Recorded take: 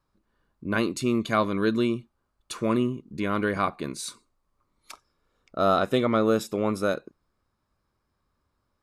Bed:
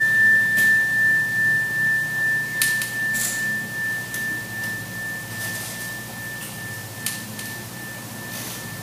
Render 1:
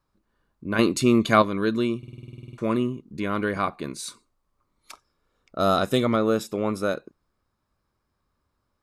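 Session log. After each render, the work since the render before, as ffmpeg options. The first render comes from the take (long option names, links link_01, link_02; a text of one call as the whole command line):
ffmpeg -i in.wav -filter_complex "[0:a]asettb=1/sr,asplit=3[link_01][link_02][link_03];[link_01]atrim=end=5.594[link_04];[link_02]atrim=start=5.59:end=6.16,asetpts=PTS-STARTPTS,afade=type=in:duration=0.004:curve=qsin,afade=type=out:start_time=0.566:duration=0.004:curve=qsin,bass=frequency=250:gain=4,treble=frequency=4000:gain=10[link_05];[link_03]atrim=start=6.156[link_06];[link_04][link_05]acrossfade=duration=0.004:curve1=hsin:curve2=qsin[link_07];[link_07][link_06]acrossfade=duration=0.004:curve1=qsin:curve2=hsin,asplit=15[link_08][link_09][link_10][link_11][link_12][link_13][link_14][link_15][link_16][link_17][link_18][link_19][link_20][link_21][link_22];[link_08]atrim=end=0.792[link_23];[link_09]atrim=start=0.788:end=1.422,asetpts=PTS-STARTPTS,volume=6dB[link_24];[link_10]atrim=start=1.418:end=2.032[link_25];[link_11]atrim=start=1.978:end=2.032[link_26];[link_12]atrim=start=1.978:end=2.032[link_27];[link_13]atrim=start=1.978:end=2.032[link_28];[link_14]atrim=start=1.978:end=2.032[link_29];[link_15]atrim=start=1.978:end=2.032[link_30];[link_16]atrim=start=1.978:end=2.032[link_31];[link_17]atrim=start=1.978:end=2.032[link_32];[link_18]atrim=start=1.978:end=2.032[link_33];[link_19]atrim=start=1.978:end=2.032[link_34];[link_20]atrim=start=1.978:end=2.032[link_35];[link_21]atrim=start=1.978:end=2.032[link_36];[link_22]atrim=start=2.578[link_37];[link_23][link_24]acrossfade=duration=0.004:curve1=hsin:curve2=hsin[link_38];[link_38][link_25]acrossfade=duration=0.004:curve1=hsin:curve2=hsin[link_39];[link_39][link_26]acrossfade=duration=0.004:curve1=hsin:curve2=hsin[link_40];[link_40][link_27]acrossfade=duration=0.004:curve1=hsin:curve2=hsin[link_41];[link_41][link_28]acrossfade=duration=0.004:curve1=hsin:curve2=hsin[link_42];[link_42][link_29]acrossfade=duration=0.004:curve1=hsin:curve2=hsin[link_43];[link_43][link_30]acrossfade=duration=0.004:curve1=hsin:curve2=hsin[link_44];[link_44][link_31]acrossfade=duration=0.004:curve1=hsin:curve2=hsin[link_45];[link_45][link_32]acrossfade=duration=0.004:curve1=hsin:curve2=hsin[link_46];[link_46][link_33]acrossfade=duration=0.004:curve1=hsin:curve2=hsin[link_47];[link_47][link_34]acrossfade=duration=0.004:curve1=hsin:curve2=hsin[link_48];[link_48][link_35]acrossfade=duration=0.004:curve1=hsin:curve2=hsin[link_49];[link_49][link_36]acrossfade=duration=0.004:curve1=hsin:curve2=hsin[link_50];[link_50][link_37]acrossfade=duration=0.004:curve1=hsin:curve2=hsin" out.wav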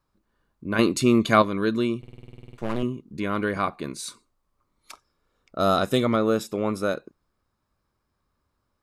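ffmpeg -i in.wav -filter_complex "[0:a]asettb=1/sr,asplit=3[link_01][link_02][link_03];[link_01]atrim=end=2.014[link_04];[link_02]atrim=start=2.01:end=2.83,asetpts=PTS-STARTPTS,afade=type=in:duration=0.004:curve=qsin,afade=type=out:start_time=0.816:duration=0.004:curve=qsin,aeval=exprs='max(val(0),0)':channel_layout=same[link_05];[link_03]atrim=start=2.826[link_06];[link_04][link_05]acrossfade=duration=0.004:curve1=hsin:curve2=qsin[link_07];[link_07][link_06]acrossfade=duration=0.004:curve1=qsin:curve2=hsin" out.wav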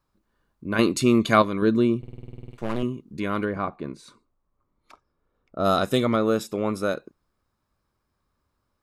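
ffmpeg -i in.wav -filter_complex "[0:a]asettb=1/sr,asplit=3[link_01][link_02][link_03];[link_01]atrim=end=1.624[link_04];[link_02]atrim=start=1.62:end=2.51,asetpts=PTS-STARTPTS,afade=type=in:duration=0.004:curve=qsin,afade=type=out:start_time=0.886:duration=0.004:curve=qsin,tiltshelf=frequency=970:gain=5[link_05];[link_03]atrim=start=2.506[link_06];[link_04][link_05]acrossfade=duration=0.004:curve1=hsin:curve2=qsin[link_07];[link_07][link_06]acrossfade=duration=0.004:curve1=qsin:curve2=hsin,asplit=3[link_08][link_09][link_10];[link_08]afade=type=out:start_time=3.44:duration=0.02[link_11];[link_09]lowpass=frequency=1000:poles=1,afade=type=in:start_time=3.44:duration=0.02,afade=type=out:start_time=5.64:duration=0.02[link_12];[link_10]afade=type=in:start_time=5.64:duration=0.02[link_13];[link_11][link_12][link_13]amix=inputs=3:normalize=0" out.wav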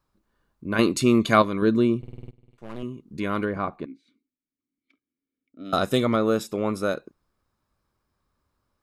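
ffmpeg -i in.wav -filter_complex "[0:a]asettb=1/sr,asplit=3[link_01][link_02][link_03];[link_01]atrim=end=3.854[link_04];[link_02]atrim=start=3.85:end=5.73,asetpts=PTS-STARTPTS,afade=type=in:duration=0.004:curve=qsin,afade=type=out:start_time=1.876:duration=0.004:curve=qsin,asplit=3[link_05][link_06][link_07];[link_05]bandpass=frequency=270:width_type=q:width=8,volume=0dB[link_08];[link_06]bandpass=frequency=2290:width_type=q:width=8,volume=-6dB[link_09];[link_07]bandpass=frequency=3010:width_type=q:width=8,volume=-9dB[link_10];[link_08][link_09][link_10]amix=inputs=3:normalize=0[link_11];[link_03]atrim=start=5.726[link_12];[link_04][link_11]acrossfade=duration=0.004:curve1=hsin:curve2=qsin[link_13];[link_13][link_12]acrossfade=duration=0.004:curve1=qsin:curve2=hsin,asplit=2[link_14][link_15];[link_14]atrim=end=2.31,asetpts=PTS-STARTPTS,afade=type=out:start_time=2.306:duration=0.004:curve=hsin:silence=0.125893[link_16];[link_15]atrim=start=2.31,asetpts=PTS-STARTPTS,afade=type=in:duration=0.86:curve=qua:silence=0.125893[link_17];[link_16][link_17]concat=n=2:v=0:a=1" out.wav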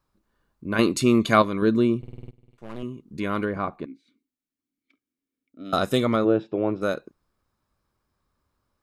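ffmpeg -i in.wav -filter_complex "[0:a]asplit=3[link_01][link_02][link_03];[link_01]afade=type=out:start_time=6.24:duration=0.02[link_04];[link_02]highpass=120,equalizer=frequency=120:width_type=q:width=4:gain=9,equalizer=frequency=220:width_type=q:width=4:gain=-5,equalizer=frequency=330:width_type=q:width=4:gain=7,equalizer=frequency=680:width_type=q:width=4:gain=4,equalizer=frequency=1200:width_type=q:width=4:gain=-10,equalizer=frequency=2100:width_type=q:width=4:gain=-9,lowpass=frequency=2800:width=0.5412,lowpass=frequency=2800:width=1.3066,afade=type=in:start_time=6.24:duration=0.02,afade=type=out:start_time=6.81:duration=0.02[link_05];[link_03]afade=type=in:start_time=6.81:duration=0.02[link_06];[link_04][link_05][link_06]amix=inputs=3:normalize=0" out.wav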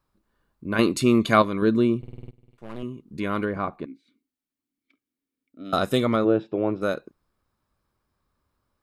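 ffmpeg -i in.wav -af "equalizer=frequency=6300:width=2:gain=-3" out.wav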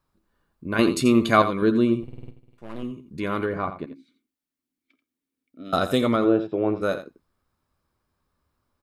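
ffmpeg -i in.wav -filter_complex "[0:a]asplit=2[link_01][link_02];[link_02]adelay=12,volume=-12dB[link_03];[link_01][link_03]amix=inputs=2:normalize=0,aecho=1:1:85:0.266" out.wav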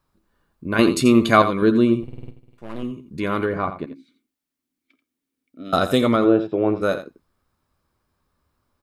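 ffmpeg -i in.wav -af "volume=3.5dB,alimiter=limit=-1dB:level=0:latency=1" out.wav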